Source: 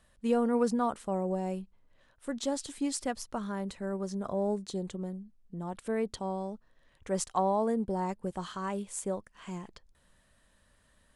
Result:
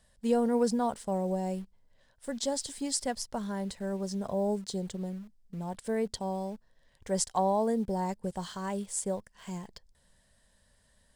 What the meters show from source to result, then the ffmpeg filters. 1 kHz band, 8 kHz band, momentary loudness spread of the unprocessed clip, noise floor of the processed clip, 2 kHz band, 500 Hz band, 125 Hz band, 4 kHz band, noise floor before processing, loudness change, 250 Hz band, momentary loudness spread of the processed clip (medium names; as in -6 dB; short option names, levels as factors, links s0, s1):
0.0 dB, +4.5 dB, 14 LU, -68 dBFS, -1.0 dB, +1.0 dB, +1.5 dB, +4.5 dB, -67 dBFS, +1.0 dB, +0.5 dB, 14 LU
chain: -filter_complex "[0:a]equalizer=f=315:t=o:w=0.33:g=-10,equalizer=f=1250:t=o:w=0.33:g=-11,equalizer=f=2500:t=o:w=0.33:g=-6,equalizer=f=5000:t=o:w=0.33:g=6,equalizer=f=8000:t=o:w=0.33:g=4,asplit=2[s0][s1];[s1]acrusher=bits=7:mix=0:aa=0.000001,volume=0.251[s2];[s0][s2]amix=inputs=2:normalize=0"